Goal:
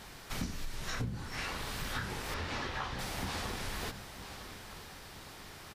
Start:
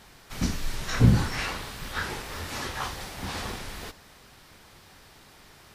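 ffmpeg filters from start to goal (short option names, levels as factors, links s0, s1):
-filter_complex "[0:a]asettb=1/sr,asplit=3[s0][s1][s2];[s0]atrim=end=2.344[s3];[s1]atrim=start=2.34:end=2.99,asetpts=PTS-STARTPTS,afade=t=in:d=0.004:c=qsin,afade=t=out:st=0.646:d=0.004:c=qsin,lowpass=4300[s4];[s2]atrim=start=2.986[s5];[s3][s4]acrossfade=d=0.004:c1=hsin:c2=qsin[s6];[s6][s5]acrossfade=d=0.004:c1=qsin:c2=hsin,aecho=1:1:954|1908|2862:0.126|0.0466|0.0172,acompressor=threshold=0.0158:ratio=16,volume=1.33"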